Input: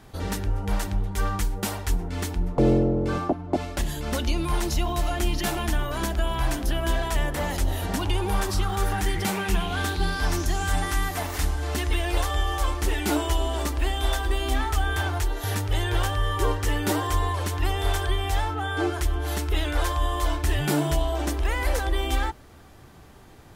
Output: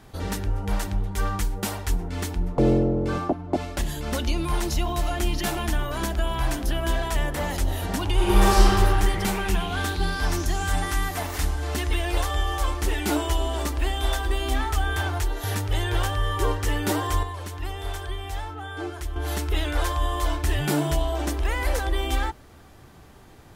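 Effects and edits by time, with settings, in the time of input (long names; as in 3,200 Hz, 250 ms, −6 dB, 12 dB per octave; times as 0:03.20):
0:08.14–0:08.66: thrown reverb, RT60 2.4 s, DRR −7.5 dB
0:17.23–0:19.16: clip gain −7 dB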